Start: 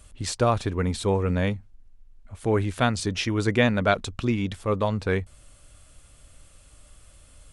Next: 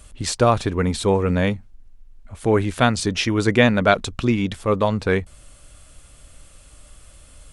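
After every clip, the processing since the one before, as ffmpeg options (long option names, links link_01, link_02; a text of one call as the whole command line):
ffmpeg -i in.wav -af "equalizer=frequency=97:width=3.6:gain=-4,volume=5.5dB" out.wav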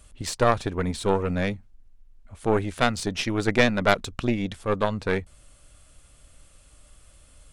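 ffmpeg -i in.wav -af "aeval=exprs='0.891*(cos(1*acos(clip(val(0)/0.891,-1,1)))-cos(1*PI/2))+0.282*(cos(2*acos(clip(val(0)/0.891,-1,1)))-cos(2*PI/2))+0.0794*(cos(6*acos(clip(val(0)/0.891,-1,1)))-cos(6*PI/2))+0.0282*(cos(7*acos(clip(val(0)/0.891,-1,1)))-cos(7*PI/2))+0.0251*(cos(8*acos(clip(val(0)/0.891,-1,1)))-cos(8*PI/2))':channel_layout=same,volume=-4.5dB" out.wav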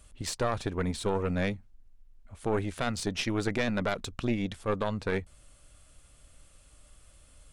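ffmpeg -i in.wav -af "alimiter=limit=-13dB:level=0:latency=1:release=17,volume=-3.5dB" out.wav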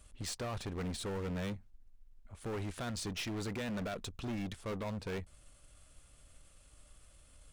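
ffmpeg -i in.wav -af "volume=32dB,asoftclip=hard,volume=-32dB,aeval=exprs='0.0266*(cos(1*acos(clip(val(0)/0.0266,-1,1)))-cos(1*PI/2))+0.00335*(cos(4*acos(clip(val(0)/0.0266,-1,1)))-cos(4*PI/2))':channel_layout=same,volume=-3.5dB" out.wav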